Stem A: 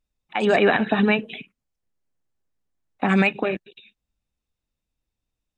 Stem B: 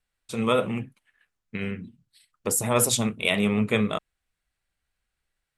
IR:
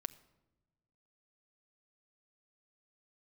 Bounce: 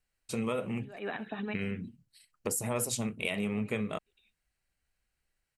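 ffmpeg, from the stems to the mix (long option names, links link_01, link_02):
-filter_complex "[0:a]adelay=400,volume=-18dB[link_01];[1:a]equalizer=frequency=1200:width=1.5:gain=-3.5,bandreject=frequency=3500:width=6.4,acompressor=threshold=-30dB:ratio=4,volume=-0.5dB,asplit=2[link_02][link_03];[link_03]apad=whole_len=263452[link_04];[link_01][link_04]sidechaincompress=threshold=-57dB:ratio=6:attack=22:release=165[link_05];[link_05][link_02]amix=inputs=2:normalize=0"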